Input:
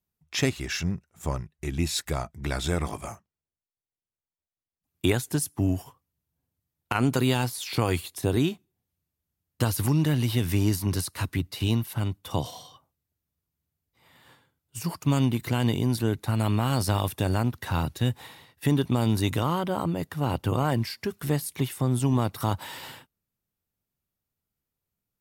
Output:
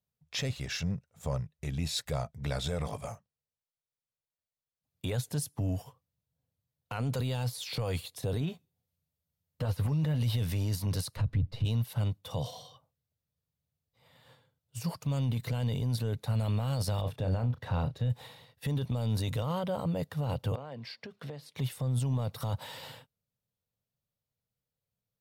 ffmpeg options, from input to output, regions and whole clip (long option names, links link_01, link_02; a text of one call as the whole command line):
ffmpeg -i in.wav -filter_complex "[0:a]asettb=1/sr,asplit=3[link_01][link_02][link_03];[link_01]atrim=end=8.404[link_04];[link_02]atrim=start=8.4:end=10.21,asetpts=PTS-STARTPTS,afade=type=in:duration=0.004:curve=qsin,afade=type=out:start_time=1.806:duration=0.004:curve=qsin,acrossover=split=2800[link_05][link_06];[link_06]acompressor=threshold=-49dB:ratio=4:attack=1:release=60[link_07];[link_05][link_07]amix=inputs=2:normalize=0,highshelf=frequency=7900:gain=5,asplit=2[link_08][link_09];[link_09]adelay=12,volume=-9dB[link_10];[link_08][link_10]amix=inputs=2:normalize=0,atrim=end_sample=79821[link_11];[link_03]atrim=start=10.206[link_12];[link_04][link_11]acrossfade=duration=0.004:curve1=hsin:curve2=qsin[link_13];[link_13][link_12]acrossfade=duration=0.004:curve1=qsin:curve2=hsin,asettb=1/sr,asplit=3[link_14][link_15][link_16];[link_14]atrim=end=11.164[link_17];[link_15]atrim=start=11.16:end=11.65,asetpts=PTS-STARTPTS,afade=type=in:duration=0.004:curve=qsin,afade=type=out:start_time=0.486:duration=0.004:curve=qsin,aeval=exprs='if(lt(val(0),0),0.708*val(0),val(0))':channel_layout=same,aemphasis=mode=reproduction:type=riaa[link_18];[link_16]atrim=start=11.646[link_19];[link_17][link_18]acrossfade=duration=0.004:curve1=hsin:curve2=qsin[link_20];[link_20][link_19]acrossfade=duration=0.004:curve1=qsin:curve2=hsin,asettb=1/sr,asplit=3[link_21][link_22][link_23];[link_21]atrim=end=17.014[link_24];[link_22]atrim=start=17.01:end=18.1,asetpts=PTS-STARTPTS,afade=type=in:duration=0.004:curve=qsin,afade=type=out:start_time=1.086:duration=0.004:curve=qsin,lowpass=frequency=2000:poles=1,asplit=2[link_25][link_26];[link_26]adelay=33,volume=-12dB[link_27];[link_25][link_27]amix=inputs=2:normalize=0,atrim=end_sample=48069[link_28];[link_23]atrim=start=18.096[link_29];[link_24][link_28]acrossfade=duration=0.004:curve1=hsin:curve2=qsin[link_30];[link_30][link_29]acrossfade=duration=0.004:curve1=qsin:curve2=hsin,asettb=1/sr,asplit=3[link_31][link_32][link_33];[link_31]atrim=end=20.554[link_34];[link_32]atrim=start=20.55:end=21.56,asetpts=PTS-STARTPTS,afade=type=in:duration=0.004:curve=qsin,afade=type=out:start_time=1.006:duration=0.004:curve=qsin,acrossover=split=160 4900:gain=0.0794 1 0.112[link_35][link_36][link_37];[link_35][link_36][link_37]amix=inputs=3:normalize=0,acompressor=threshold=-34dB:ratio=16:attack=3.2:release=140:knee=1:detection=peak[link_38];[link_33]atrim=start=21.556[link_39];[link_34][link_38]acrossfade=duration=0.004:curve1=hsin:curve2=qsin[link_40];[link_40][link_39]acrossfade=duration=0.004:curve1=qsin:curve2=hsin,equalizer=frequency=125:width_type=o:width=1:gain=10,equalizer=frequency=500:width_type=o:width=1:gain=12,equalizer=frequency=4000:width_type=o:width=1:gain=6,alimiter=limit=-13.5dB:level=0:latency=1:release=11,equalizer=frequency=350:width_type=o:width=0.39:gain=-14,volume=-8.5dB" out.wav